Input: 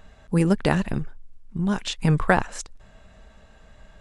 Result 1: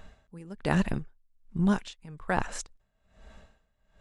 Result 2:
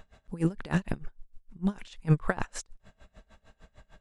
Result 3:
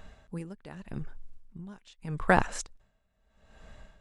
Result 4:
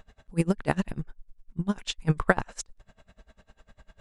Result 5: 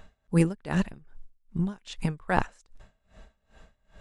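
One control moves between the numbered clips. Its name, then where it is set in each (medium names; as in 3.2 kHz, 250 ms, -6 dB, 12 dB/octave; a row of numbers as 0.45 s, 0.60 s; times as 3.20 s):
logarithmic tremolo, rate: 1.2 Hz, 6.6 Hz, 0.81 Hz, 10 Hz, 2.5 Hz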